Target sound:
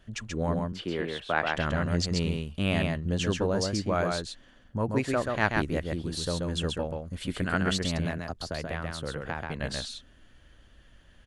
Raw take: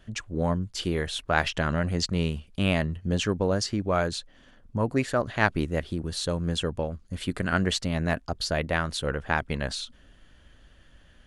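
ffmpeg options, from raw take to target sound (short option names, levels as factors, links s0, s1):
-filter_complex "[0:a]asettb=1/sr,asplit=3[s0][s1][s2];[s0]atrim=end=0.594[s3];[s1]atrim=start=0.59:end=1.55,asetpts=PTS-STARTPTS,afade=t=in:d=0.004:c=qsin,afade=t=out:st=0.956:d=0.004:c=qsin,acrossover=split=170 3600:gain=0.224 1 0.158[s4][s5][s6];[s4][s5][s6]amix=inputs=3:normalize=0[s7];[s2]atrim=start=1.546[s8];[s3][s7]acrossfade=d=0.004:c1=hsin:c2=qsin[s9];[s9][s8]acrossfade=d=0.004:c1=qsin:c2=hsin,asettb=1/sr,asplit=3[s10][s11][s12];[s10]atrim=end=8.054[s13];[s11]atrim=start=8.05:end=9.6,asetpts=PTS-STARTPTS,afade=t=in:d=0.004:c=qsin,afade=t=out:st=1.546:d=0.004:c=qsin,acrossover=split=110|1200[s14][s15][s16];[s14]acompressor=threshold=0.0112:ratio=4[s17];[s15]acompressor=threshold=0.0316:ratio=4[s18];[s16]acompressor=threshold=0.0158:ratio=4[s19];[s17][s18][s19]amix=inputs=3:normalize=0[s20];[s12]atrim=start=9.596[s21];[s13][s20]acrossfade=d=0.004:c1=hsin:c2=qsin[s22];[s22][s21]acrossfade=d=0.004:c1=qsin:c2=hsin,aecho=1:1:133:0.668,volume=0.708"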